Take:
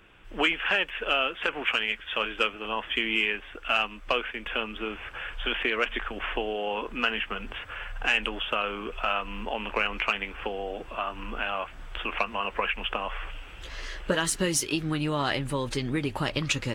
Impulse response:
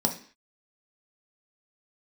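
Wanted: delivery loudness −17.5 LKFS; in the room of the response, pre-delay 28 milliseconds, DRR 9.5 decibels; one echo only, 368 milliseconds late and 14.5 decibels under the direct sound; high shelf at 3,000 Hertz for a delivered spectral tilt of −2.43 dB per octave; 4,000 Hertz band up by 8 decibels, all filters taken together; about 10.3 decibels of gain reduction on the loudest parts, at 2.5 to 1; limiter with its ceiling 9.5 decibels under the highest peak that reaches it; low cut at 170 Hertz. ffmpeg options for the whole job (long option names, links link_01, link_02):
-filter_complex "[0:a]highpass=170,highshelf=frequency=3000:gain=4.5,equalizer=frequency=4000:width_type=o:gain=9,acompressor=threshold=-31dB:ratio=2.5,alimiter=limit=-21.5dB:level=0:latency=1,aecho=1:1:368:0.188,asplit=2[link_01][link_02];[1:a]atrim=start_sample=2205,adelay=28[link_03];[link_02][link_03]afir=irnorm=-1:irlink=0,volume=-18.5dB[link_04];[link_01][link_04]amix=inputs=2:normalize=0,volume=15.5dB"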